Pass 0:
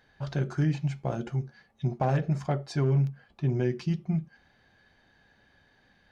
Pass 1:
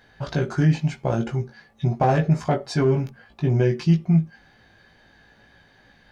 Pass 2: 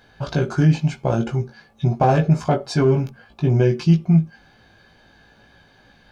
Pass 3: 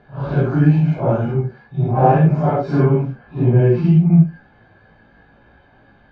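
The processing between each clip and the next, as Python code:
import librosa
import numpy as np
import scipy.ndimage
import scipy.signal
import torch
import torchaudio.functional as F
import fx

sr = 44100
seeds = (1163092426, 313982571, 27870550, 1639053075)

y1 = fx.doubler(x, sr, ms=18.0, db=-3.5)
y1 = y1 * 10.0 ** (7.0 / 20.0)
y2 = fx.notch(y1, sr, hz=1900.0, q=5.3)
y2 = y2 * 10.0 ** (3.0 / 20.0)
y3 = fx.phase_scramble(y2, sr, seeds[0], window_ms=200)
y3 = scipy.signal.sosfilt(scipy.signal.butter(2, 1700.0, 'lowpass', fs=sr, output='sos'), y3)
y3 = y3 * 10.0 ** (3.5 / 20.0)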